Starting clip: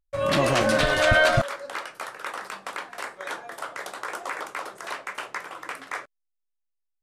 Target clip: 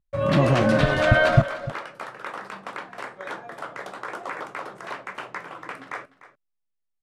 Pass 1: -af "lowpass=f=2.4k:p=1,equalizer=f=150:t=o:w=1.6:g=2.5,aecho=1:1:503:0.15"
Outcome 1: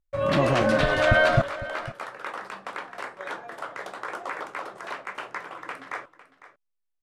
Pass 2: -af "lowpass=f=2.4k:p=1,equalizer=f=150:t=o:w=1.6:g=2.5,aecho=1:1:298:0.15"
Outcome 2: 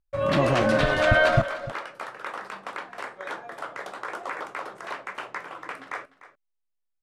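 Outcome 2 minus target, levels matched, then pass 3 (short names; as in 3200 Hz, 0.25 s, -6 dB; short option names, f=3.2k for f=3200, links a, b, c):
125 Hz band -2.5 dB
-af "lowpass=f=2.4k:p=1,equalizer=f=150:t=o:w=1.6:g=9.5,aecho=1:1:298:0.15"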